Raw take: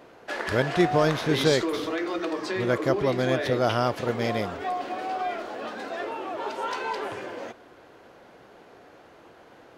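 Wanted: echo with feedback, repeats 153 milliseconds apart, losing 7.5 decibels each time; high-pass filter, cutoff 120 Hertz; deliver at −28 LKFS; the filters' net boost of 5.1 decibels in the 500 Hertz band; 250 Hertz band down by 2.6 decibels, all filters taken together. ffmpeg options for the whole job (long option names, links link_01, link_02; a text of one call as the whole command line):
ffmpeg -i in.wav -af "highpass=120,equalizer=frequency=250:width_type=o:gain=-9,equalizer=frequency=500:width_type=o:gain=8.5,aecho=1:1:153|306|459|612|765:0.422|0.177|0.0744|0.0312|0.0131,volume=-5dB" out.wav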